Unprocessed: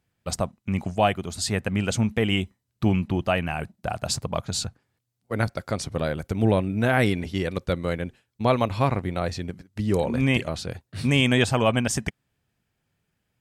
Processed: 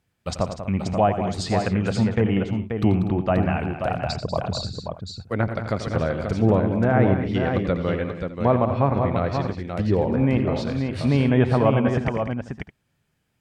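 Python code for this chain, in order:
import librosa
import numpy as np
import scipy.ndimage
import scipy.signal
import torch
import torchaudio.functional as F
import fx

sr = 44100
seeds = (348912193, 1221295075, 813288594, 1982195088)

p1 = fx.envelope_sharpen(x, sr, power=2.0, at=(3.97, 4.66), fade=0.02)
p2 = fx.env_lowpass_down(p1, sr, base_hz=1200.0, full_db=-19.5)
p3 = p2 + fx.echo_multitap(p2, sr, ms=(87, 113, 191, 245, 533, 607), db=(-11.0, -18.5, -10.5, -15.5, -6.0, -19.5), dry=0)
y = p3 * librosa.db_to_amplitude(2.0)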